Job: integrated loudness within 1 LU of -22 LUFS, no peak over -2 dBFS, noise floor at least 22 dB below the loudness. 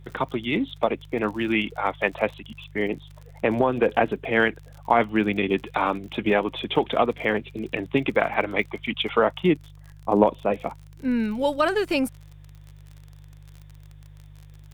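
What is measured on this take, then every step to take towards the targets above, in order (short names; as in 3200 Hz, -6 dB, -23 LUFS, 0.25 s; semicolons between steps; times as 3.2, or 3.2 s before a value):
ticks 43/s; hum 50 Hz; harmonics up to 150 Hz; hum level -43 dBFS; loudness -24.5 LUFS; peak -3.0 dBFS; loudness target -22.0 LUFS
-> de-click; de-hum 50 Hz, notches 3; gain +2.5 dB; limiter -2 dBFS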